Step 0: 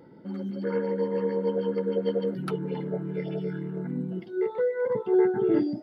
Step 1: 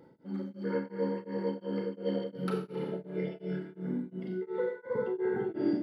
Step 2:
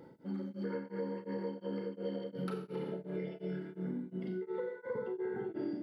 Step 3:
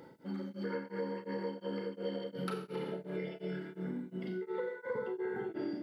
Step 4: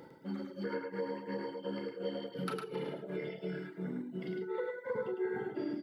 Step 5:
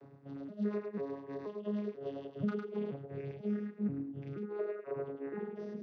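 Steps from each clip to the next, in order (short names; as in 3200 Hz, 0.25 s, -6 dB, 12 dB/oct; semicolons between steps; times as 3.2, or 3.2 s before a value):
Schroeder reverb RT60 1.3 s, combs from 29 ms, DRR -1 dB; beating tremolo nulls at 2.8 Hz; gain -4.5 dB
compressor, threshold -38 dBFS, peak gain reduction 12.5 dB; gain +2.5 dB
tilt shelf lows -4 dB, about 740 Hz; gain +2.5 dB
reverb removal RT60 0.85 s; echo 0.105 s -4.5 dB; gain +1 dB
arpeggiated vocoder bare fifth, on C#3, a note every 0.484 s; gain +1 dB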